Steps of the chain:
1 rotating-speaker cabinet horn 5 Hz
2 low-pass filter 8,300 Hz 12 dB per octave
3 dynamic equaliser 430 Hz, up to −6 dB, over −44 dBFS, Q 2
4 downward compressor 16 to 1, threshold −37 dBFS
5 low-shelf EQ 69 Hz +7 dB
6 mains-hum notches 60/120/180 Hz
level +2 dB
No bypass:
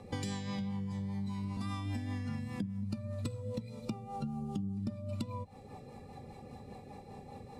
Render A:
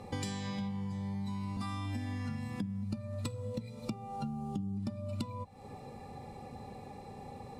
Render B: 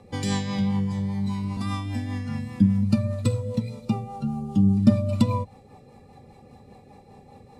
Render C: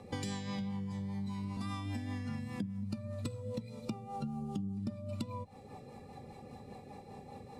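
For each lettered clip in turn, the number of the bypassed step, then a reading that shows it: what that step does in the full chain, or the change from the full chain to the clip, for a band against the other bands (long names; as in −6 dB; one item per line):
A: 1, change in momentary loudness spread −2 LU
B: 4, average gain reduction 10.0 dB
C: 5, 125 Hz band −2.0 dB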